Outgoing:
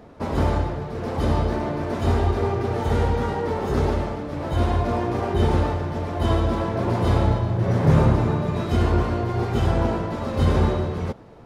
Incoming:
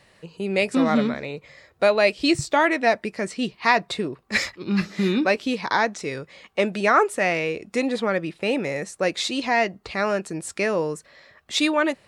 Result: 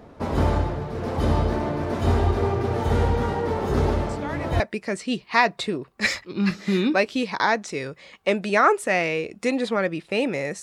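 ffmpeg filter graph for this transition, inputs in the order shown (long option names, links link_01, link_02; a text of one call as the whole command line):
ffmpeg -i cue0.wav -i cue1.wav -filter_complex "[1:a]asplit=2[link_01][link_02];[0:a]apad=whole_dur=10.62,atrim=end=10.62,atrim=end=4.602[link_03];[link_02]atrim=start=2.908:end=8.93[link_04];[link_01]atrim=start=2.4:end=2.91,asetpts=PTS-STARTPTS,volume=-14.5dB,afade=type=in:duration=0.004:curve=hsin,afade=type=out:start_time=0.506:duration=0.004:curve=hsin,adelay=180369S[link_05];[link_03][link_04]acrossfade=duration=0.004:curve1=hsin:curve2=hsin[link_06];[link_06][link_05]amix=inputs=2:normalize=0" out.wav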